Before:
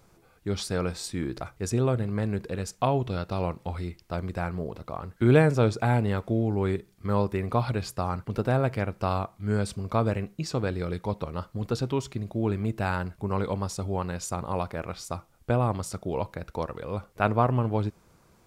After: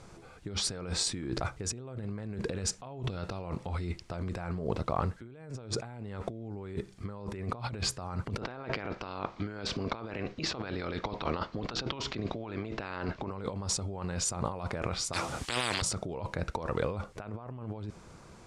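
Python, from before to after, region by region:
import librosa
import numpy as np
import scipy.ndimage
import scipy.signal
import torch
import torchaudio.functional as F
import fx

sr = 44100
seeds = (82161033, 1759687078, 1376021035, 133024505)

y = fx.spec_clip(x, sr, under_db=15, at=(8.4, 13.3), fade=0.02)
y = fx.lowpass(y, sr, hz=5100.0, slope=24, at=(8.4, 13.3), fade=0.02)
y = fx.chain(y, sr, fx.highpass(hz=72.0, slope=12),
    fx.spectral_comp(ratio=10.0), at=(15.13, 15.82))
y = scipy.signal.sosfilt(scipy.signal.butter(4, 9000.0, 'lowpass', fs=sr, output='sos'), y)
y = fx.over_compress(y, sr, threshold_db=-37.0, ratio=-1.0)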